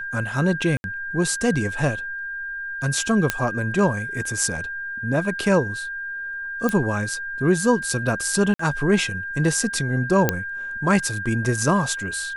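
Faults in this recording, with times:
tone 1600 Hz -28 dBFS
0.77–0.84 gap 71 ms
3.3 pop -4 dBFS
6.69 pop -10 dBFS
8.54–8.59 gap 54 ms
10.29 pop -3 dBFS

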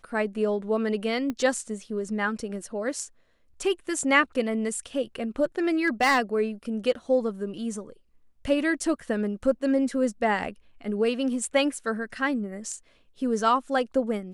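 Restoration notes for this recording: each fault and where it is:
1.3 pop -18 dBFS
5.85–6.19 clipped -16 dBFS

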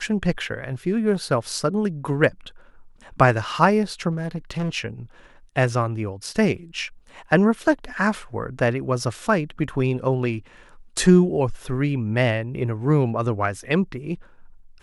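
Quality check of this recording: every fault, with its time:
4.11–4.7 clipped -22 dBFS

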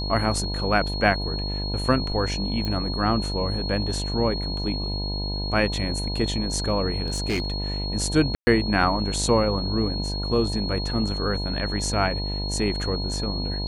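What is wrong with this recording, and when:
buzz 50 Hz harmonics 20 -29 dBFS
tone 4300 Hz -31 dBFS
2.65 pop -16 dBFS
7.06–7.54 clipped -20.5 dBFS
8.35–8.47 gap 0.12 s

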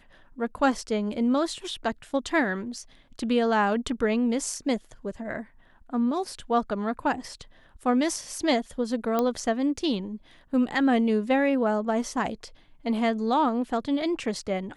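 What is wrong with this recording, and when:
9.19 pop -12 dBFS

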